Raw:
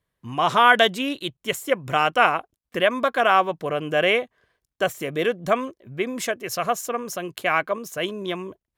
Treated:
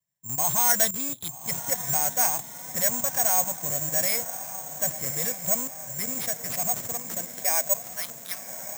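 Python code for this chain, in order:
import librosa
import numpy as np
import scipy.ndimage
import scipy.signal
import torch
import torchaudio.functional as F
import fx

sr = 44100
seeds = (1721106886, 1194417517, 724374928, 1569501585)

p1 = fx.tracing_dist(x, sr, depth_ms=0.044)
p2 = scipy.signal.sosfilt(scipy.signal.butter(2, 85.0, 'highpass', fs=sr, output='sos'), p1)
p3 = fx.fixed_phaser(p2, sr, hz=1900.0, stages=8)
p4 = fx.schmitt(p3, sr, flips_db=-33.0)
p5 = p3 + F.gain(torch.from_numpy(p4), -4.5).numpy()
p6 = fx.filter_sweep_highpass(p5, sr, from_hz=130.0, to_hz=1400.0, start_s=6.93, end_s=8.14, q=2.1)
p7 = p6 + fx.echo_diffused(p6, sr, ms=1138, feedback_pct=58, wet_db=-11.5, dry=0)
p8 = fx.vibrato(p7, sr, rate_hz=2.3, depth_cents=58.0)
p9 = (np.kron(p8[::6], np.eye(6)[0]) * 6)[:len(p8)]
y = F.gain(torch.from_numpy(p9), -12.0).numpy()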